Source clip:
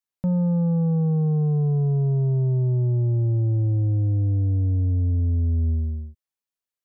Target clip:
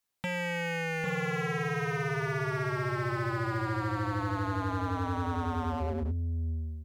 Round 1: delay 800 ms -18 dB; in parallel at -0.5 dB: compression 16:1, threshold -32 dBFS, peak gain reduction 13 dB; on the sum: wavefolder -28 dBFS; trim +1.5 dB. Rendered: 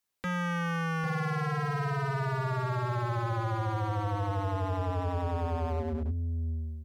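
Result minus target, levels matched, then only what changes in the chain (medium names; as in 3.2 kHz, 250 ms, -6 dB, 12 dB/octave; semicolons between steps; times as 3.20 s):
compression: peak gain reduction +8 dB
change: compression 16:1, threshold -23.5 dBFS, peak gain reduction 5 dB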